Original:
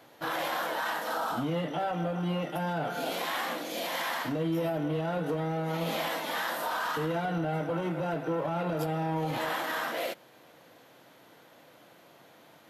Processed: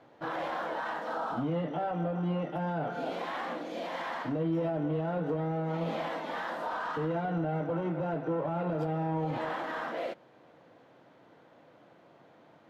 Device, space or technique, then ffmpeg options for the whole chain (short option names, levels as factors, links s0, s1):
through cloth: -af "lowpass=6800,highshelf=f=2300:g=-15"